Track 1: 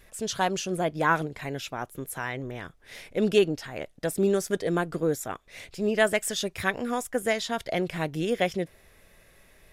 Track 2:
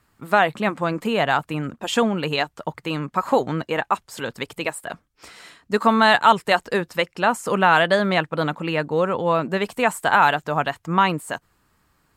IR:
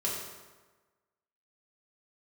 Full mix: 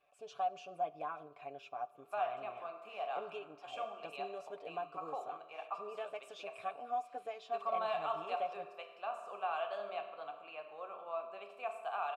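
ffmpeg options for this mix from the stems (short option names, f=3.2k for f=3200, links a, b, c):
-filter_complex "[0:a]aecho=1:1:6.9:0.67,acompressor=threshold=-23dB:ratio=6,volume=-4.5dB,asplit=2[a][b];[b]volume=-21.5dB[c];[1:a]highpass=f=610:p=1,highshelf=f=5.5k:g=9,adelay=1800,volume=-16dB,asplit=2[d][e];[e]volume=-4.5dB[f];[2:a]atrim=start_sample=2205[g];[c][f]amix=inputs=2:normalize=0[h];[h][g]afir=irnorm=-1:irlink=0[i];[a][d][i]amix=inputs=3:normalize=0,asplit=3[j][k][l];[j]bandpass=f=730:t=q:w=8,volume=0dB[m];[k]bandpass=f=1.09k:t=q:w=8,volume=-6dB[n];[l]bandpass=f=2.44k:t=q:w=8,volume=-9dB[o];[m][n][o]amix=inputs=3:normalize=0"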